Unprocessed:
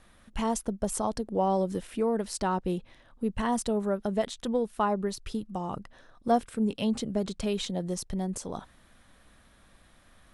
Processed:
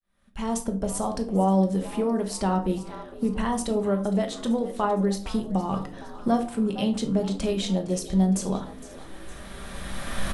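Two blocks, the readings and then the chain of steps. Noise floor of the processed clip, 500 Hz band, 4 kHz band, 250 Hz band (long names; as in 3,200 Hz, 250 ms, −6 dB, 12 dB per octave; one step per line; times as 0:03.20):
−42 dBFS, +2.5 dB, +3.5 dB, +6.0 dB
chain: fade in at the beginning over 1.11 s
camcorder AGC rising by 14 dB per second
echo with shifted repeats 461 ms, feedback 54%, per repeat +68 Hz, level −16.5 dB
rectangular room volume 370 cubic metres, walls furnished, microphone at 1.2 metres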